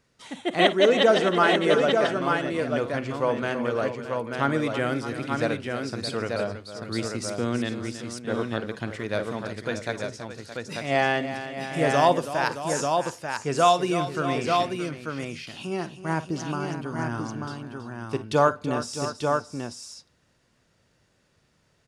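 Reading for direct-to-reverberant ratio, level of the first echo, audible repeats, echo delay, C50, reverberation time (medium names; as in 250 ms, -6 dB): no reverb, -17.5 dB, 4, 50 ms, no reverb, no reverb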